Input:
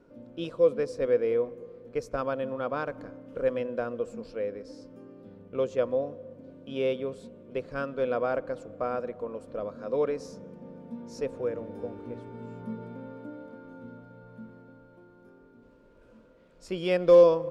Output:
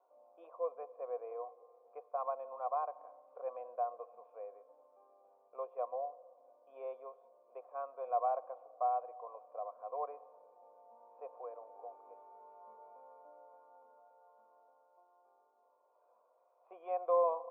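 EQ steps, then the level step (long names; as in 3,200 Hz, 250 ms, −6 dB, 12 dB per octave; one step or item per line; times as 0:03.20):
formant resonators in series a
high-pass filter 470 Hz 24 dB per octave
+6.0 dB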